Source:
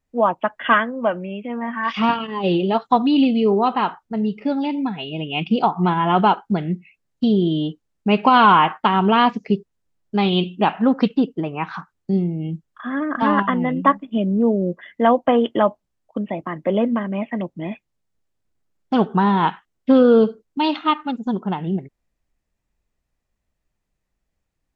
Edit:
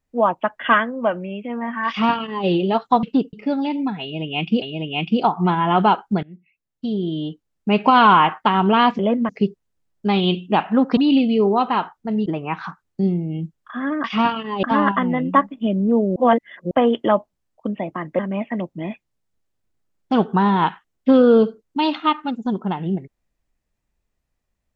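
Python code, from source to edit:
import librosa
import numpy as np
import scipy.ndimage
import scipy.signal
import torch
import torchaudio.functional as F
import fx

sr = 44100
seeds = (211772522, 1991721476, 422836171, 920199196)

y = fx.edit(x, sr, fx.duplicate(start_s=1.88, length_s=0.59, to_s=13.14),
    fx.swap(start_s=3.03, length_s=1.29, other_s=11.06, other_length_s=0.3),
    fx.repeat(start_s=5.01, length_s=0.6, count=2),
    fx.fade_in_from(start_s=6.62, length_s=1.64, floor_db=-22.5),
    fx.reverse_span(start_s=14.67, length_s=0.55),
    fx.move(start_s=16.7, length_s=0.3, to_s=9.38), tone=tone)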